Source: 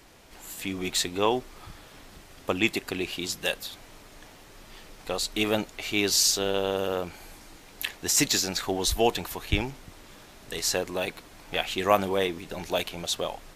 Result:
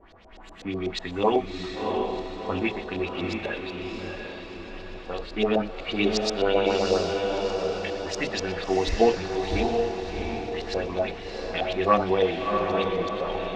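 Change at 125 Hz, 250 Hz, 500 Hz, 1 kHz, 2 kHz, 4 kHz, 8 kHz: +2.0, +3.5, +5.0, +4.0, −0.5, −4.5, −15.0 decibels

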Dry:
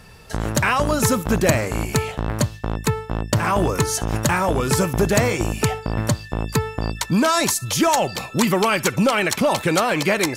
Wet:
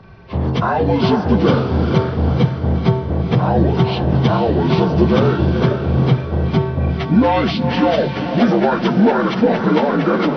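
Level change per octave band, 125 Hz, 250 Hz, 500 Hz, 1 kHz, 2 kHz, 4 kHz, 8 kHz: +7.0 dB, +7.0 dB, +4.5 dB, +2.5 dB, −2.5 dB, −1.5 dB, below −20 dB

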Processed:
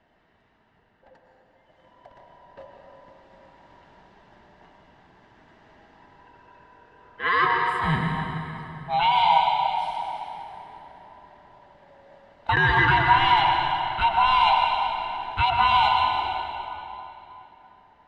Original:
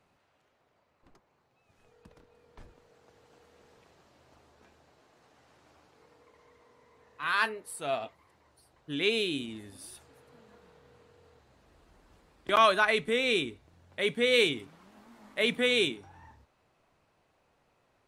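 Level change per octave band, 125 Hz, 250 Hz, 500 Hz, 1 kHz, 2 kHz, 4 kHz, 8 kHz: +17.0 dB, +1.5 dB, −4.5 dB, +15.0 dB, +7.0 dB, +4.0 dB, below −10 dB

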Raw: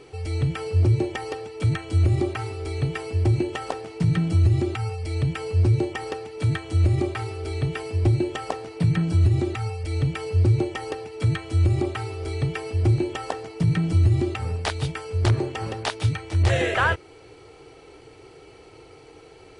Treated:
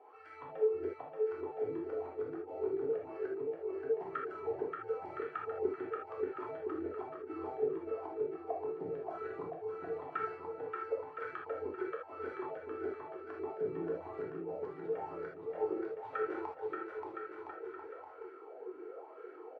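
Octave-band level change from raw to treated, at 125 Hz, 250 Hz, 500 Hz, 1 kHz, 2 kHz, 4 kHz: −38.5 dB, −16.0 dB, −5.5 dB, −9.5 dB, −18.0 dB, below −30 dB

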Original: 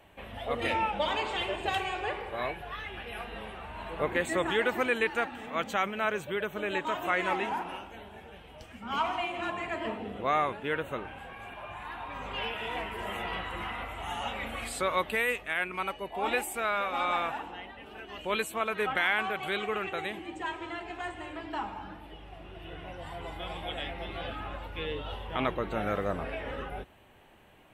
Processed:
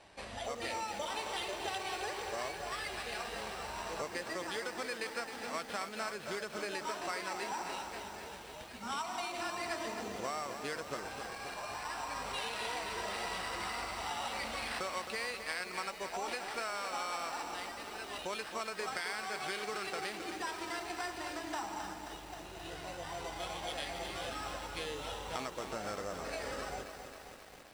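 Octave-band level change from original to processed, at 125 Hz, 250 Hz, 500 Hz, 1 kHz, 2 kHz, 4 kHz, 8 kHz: −9.5, −8.0, −7.5, −6.0, −7.5, −2.5, +3.0 decibels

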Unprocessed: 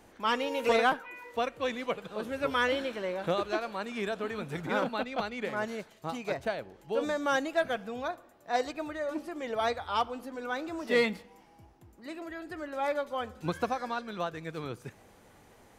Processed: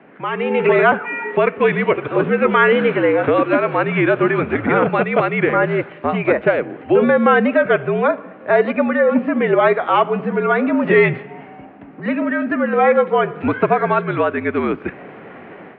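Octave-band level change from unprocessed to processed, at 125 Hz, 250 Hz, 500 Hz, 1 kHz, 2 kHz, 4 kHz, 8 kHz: +19.5 dB, +18.0 dB, +16.5 dB, +14.0 dB, +15.5 dB, +4.0 dB, below −30 dB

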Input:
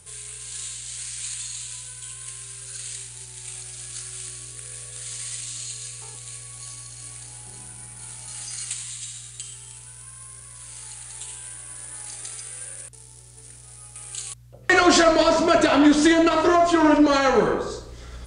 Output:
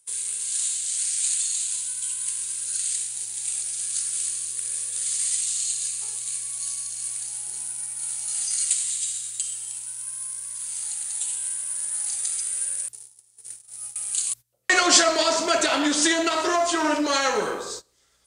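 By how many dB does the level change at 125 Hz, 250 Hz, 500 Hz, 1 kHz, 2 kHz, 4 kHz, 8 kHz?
below −10 dB, −9.0 dB, −5.5 dB, −3.5 dB, −1.5 dB, +3.0 dB, +8.5 dB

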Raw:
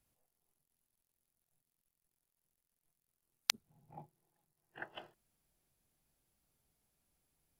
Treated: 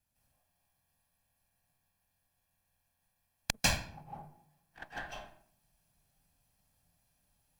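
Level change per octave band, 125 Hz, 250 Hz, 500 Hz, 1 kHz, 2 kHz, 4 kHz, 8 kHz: +19.5, +15.0, +11.5, +9.5, +8.0, +3.0, +6.0 decibels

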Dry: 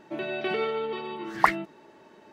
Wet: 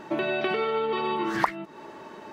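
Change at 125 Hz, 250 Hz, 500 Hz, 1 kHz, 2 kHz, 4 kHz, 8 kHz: +3.0, +4.0, +3.0, 0.0, 0.0, +3.0, −1.0 decibels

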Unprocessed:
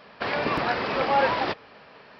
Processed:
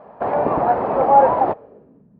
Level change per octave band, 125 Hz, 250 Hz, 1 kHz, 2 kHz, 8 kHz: +5.0 dB, +5.5 dB, +10.0 dB, −7.5 dB, can't be measured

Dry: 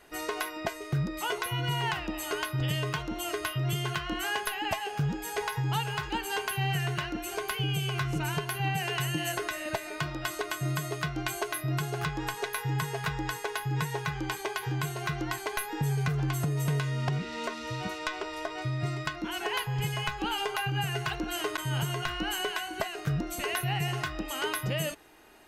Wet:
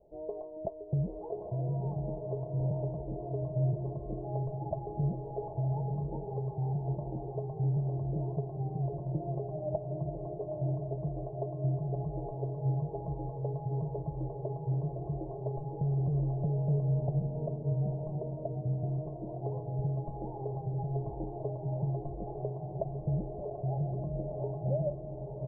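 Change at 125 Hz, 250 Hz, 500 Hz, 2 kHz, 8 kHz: +0.5 dB, −2.0 dB, −0.5 dB, below −40 dB, below −40 dB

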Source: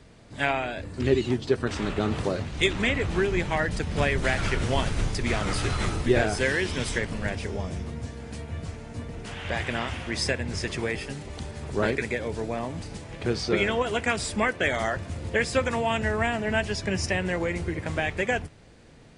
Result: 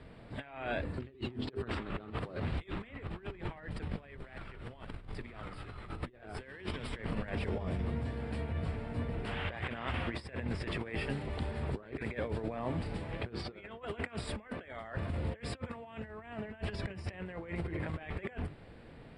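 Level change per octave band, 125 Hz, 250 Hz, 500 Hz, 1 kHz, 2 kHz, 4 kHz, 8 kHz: −8.0, −10.5, −14.0, −13.0, −15.5, −15.0, −22.5 decibels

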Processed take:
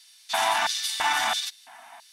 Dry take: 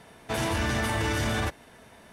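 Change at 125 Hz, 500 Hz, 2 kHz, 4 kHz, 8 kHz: below −25 dB, −3.5 dB, +3.0 dB, +8.5 dB, +6.5 dB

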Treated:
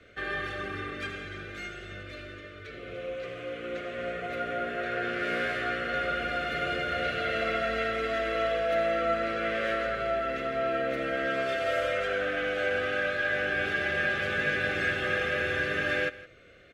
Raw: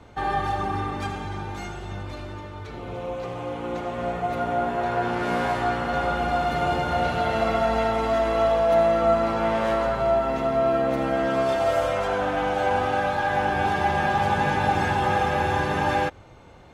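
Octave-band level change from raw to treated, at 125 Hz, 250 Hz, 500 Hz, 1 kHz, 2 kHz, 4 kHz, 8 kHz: −12.0 dB, −9.0 dB, −6.5 dB, −11.0 dB, +1.5 dB, −1.0 dB, can't be measured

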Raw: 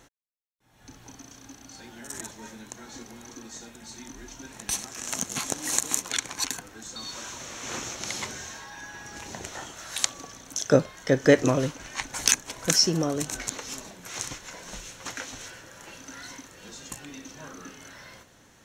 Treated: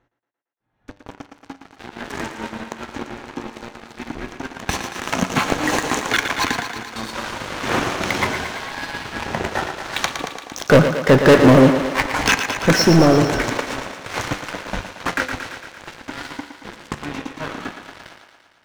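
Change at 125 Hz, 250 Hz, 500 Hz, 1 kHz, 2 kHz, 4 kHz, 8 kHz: +12.5, +12.5, +10.5, +16.0, +13.0, +5.5, −2.5 decibels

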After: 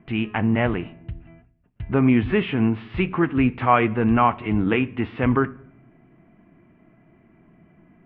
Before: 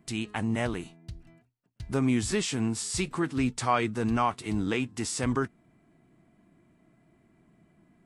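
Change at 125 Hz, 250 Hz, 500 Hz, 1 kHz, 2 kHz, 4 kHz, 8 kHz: +8.0 dB, +8.5 dB, +8.0 dB, +8.5 dB, +8.0 dB, −0.5 dB, below −40 dB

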